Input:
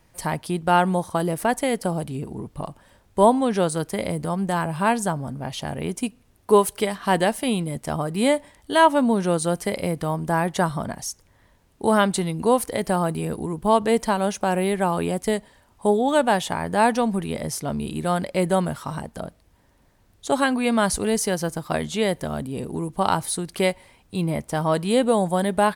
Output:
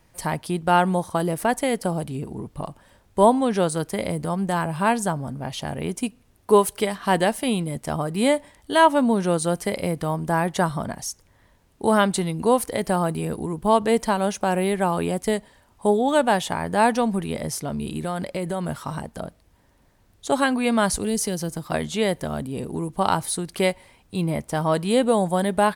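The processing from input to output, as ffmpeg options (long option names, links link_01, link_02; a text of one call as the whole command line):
ffmpeg -i in.wav -filter_complex "[0:a]asettb=1/sr,asplit=3[link_01][link_02][link_03];[link_01]atrim=end=17.534[link_04];[link_02]atrim=start=17.53:end=18.69,asetpts=PTS-STARTPTS,afade=type=in:duration=0.004:curve=qsin,afade=type=out:start_time=1.156:duration=0.004:curve=qsin,acompressor=threshold=-23dB:ratio=6:attack=3.2:release=140:knee=1:detection=peak[link_05];[link_03]atrim=start=18.686[link_06];[link_04][link_05]acrossfade=duration=0.004:curve1=hsin:curve2=qsin[link_07];[link_07][link_06]acrossfade=duration=0.004:curve1=qsin:curve2=hsin,asettb=1/sr,asplit=3[link_08][link_09][link_10];[link_08]atrim=end=20.924[link_11];[link_09]atrim=start=20.92:end=21.72,asetpts=PTS-STARTPTS,afade=type=in:duration=0.004:curve=qsin,afade=type=out:start_time=0.796:duration=0.004:curve=qsin,acrossover=split=430|3000[link_12][link_13][link_14];[link_13]acompressor=threshold=-36dB:ratio=6:attack=3.2:release=140:knee=2.83:detection=peak[link_15];[link_12][link_15][link_14]amix=inputs=3:normalize=0[link_16];[link_10]atrim=start=21.716[link_17];[link_11][link_16]acrossfade=duration=0.004:curve1=hsin:curve2=qsin[link_18];[link_18][link_17]acrossfade=duration=0.004:curve1=qsin:curve2=hsin" out.wav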